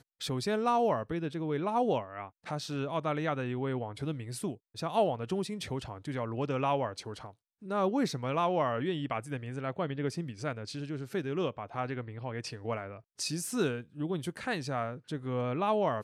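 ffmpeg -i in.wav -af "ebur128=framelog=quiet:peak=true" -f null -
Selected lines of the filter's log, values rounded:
Integrated loudness:
  I:         -33.5 LUFS
  Threshold: -43.6 LUFS
Loudness range:
  LRA:         3.9 LU
  Threshold: -54.0 LUFS
  LRA low:   -36.2 LUFS
  LRA high:  -32.3 LUFS
True peak:
  Peak:      -16.9 dBFS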